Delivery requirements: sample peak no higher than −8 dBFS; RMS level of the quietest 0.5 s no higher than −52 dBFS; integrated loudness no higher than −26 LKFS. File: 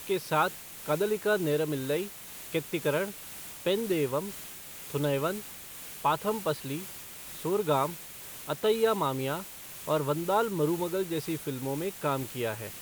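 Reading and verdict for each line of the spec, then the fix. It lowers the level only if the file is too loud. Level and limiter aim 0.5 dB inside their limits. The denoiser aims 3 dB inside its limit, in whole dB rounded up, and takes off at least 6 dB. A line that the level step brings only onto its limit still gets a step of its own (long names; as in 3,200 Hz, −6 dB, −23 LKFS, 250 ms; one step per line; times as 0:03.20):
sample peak −13.5 dBFS: in spec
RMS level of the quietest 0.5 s −44 dBFS: out of spec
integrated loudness −30.5 LKFS: in spec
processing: broadband denoise 11 dB, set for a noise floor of −44 dBFS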